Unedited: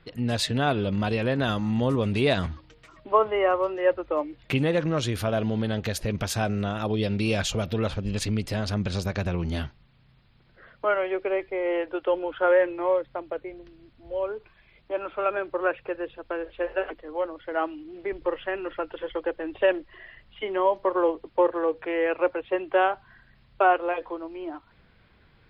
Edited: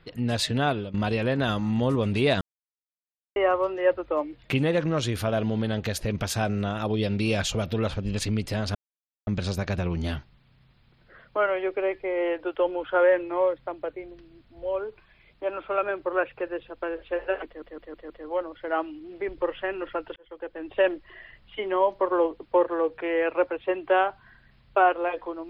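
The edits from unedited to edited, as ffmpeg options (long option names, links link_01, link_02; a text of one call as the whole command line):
ffmpeg -i in.wav -filter_complex "[0:a]asplit=10[link_01][link_02][link_03][link_04][link_05][link_06][link_07][link_08][link_09][link_10];[link_01]atrim=end=0.94,asetpts=PTS-STARTPTS,afade=type=out:start_time=0.66:duration=0.28:silence=0.141254[link_11];[link_02]atrim=start=0.94:end=2.41,asetpts=PTS-STARTPTS,afade=type=in:duration=0.004:curve=hsin:silence=0.141254,afade=type=out:start_time=1.466:duration=0.004:curve=hsin[link_12];[link_03]atrim=start=2.41:end=3.36,asetpts=PTS-STARTPTS,volume=0[link_13];[link_04]atrim=start=3.36:end=8.75,asetpts=PTS-STARTPTS,afade=type=in:duration=0.004:curve=hsin,afade=type=out:start_time=5.386:duration=0.004:curve=hsin,apad=pad_dur=0.52[link_14];[link_05]atrim=start=8.75:end=17.102,asetpts=PTS-STARTPTS,afade=type=in:duration=0.004:curve=hsin[link_15];[link_06]atrim=start=16.938:end=17.102[link_16];[link_07]atrim=start=16.938:end=17.102[link_17];[link_08]atrim=start=16.938:end=17.102[link_18];[link_09]atrim=start=16.938:end=19,asetpts=PTS-STARTPTS,afade=type=out:start_time=2.058:duration=0.004:curve=hsin[link_19];[link_10]atrim=start=19,asetpts=PTS-STARTPTS,afade=type=in:duration=0.7[link_20];[link_11][link_12][link_13][link_14][link_15]concat=n=5:v=0:a=1[link_21];[link_21][link_16]acrossfade=duration=0.004:curve1=hsin:curve2=hsin[link_22];[link_22][link_17]acrossfade=duration=0.004:curve1=hsin:curve2=hsin[link_23];[link_23][link_18]acrossfade=duration=0.004:curve1=hsin:curve2=hsin[link_24];[link_19][link_20]concat=n=2:v=0:a=1[link_25];[link_24][link_25]acrossfade=duration=0.004:curve1=hsin:curve2=hsin" out.wav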